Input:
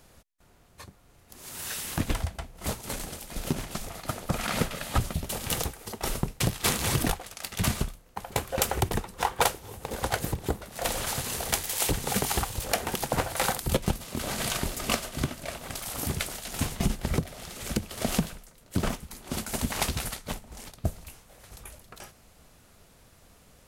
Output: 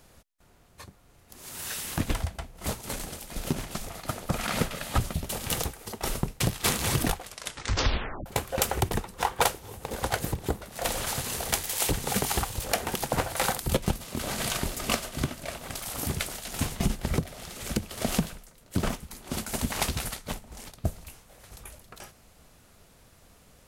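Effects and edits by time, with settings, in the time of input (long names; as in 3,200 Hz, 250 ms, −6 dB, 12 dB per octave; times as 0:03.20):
0:07.25: tape stop 1.01 s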